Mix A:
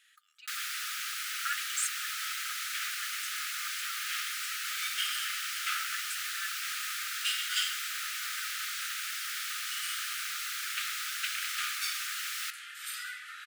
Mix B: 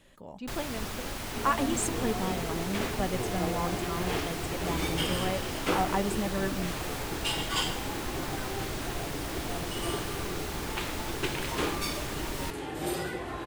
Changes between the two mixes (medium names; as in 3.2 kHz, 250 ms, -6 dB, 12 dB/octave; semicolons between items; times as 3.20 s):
first sound -4.5 dB; master: remove brick-wall FIR high-pass 1.2 kHz